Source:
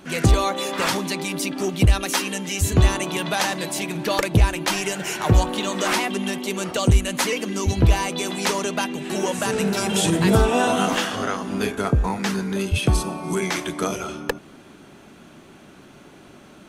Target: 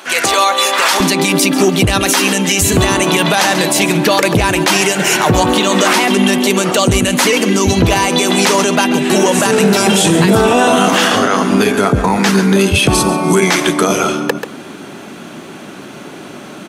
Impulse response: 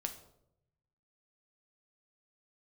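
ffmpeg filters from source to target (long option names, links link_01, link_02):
-af "asetnsamples=nb_out_samples=441:pad=0,asendcmd='1 highpass f 150',highpass=700,aecho=1:1:137:0.158,alimiter=level_in=17dB:limit=-1dB:release=50:level=0:latency=1,volume=-1dB"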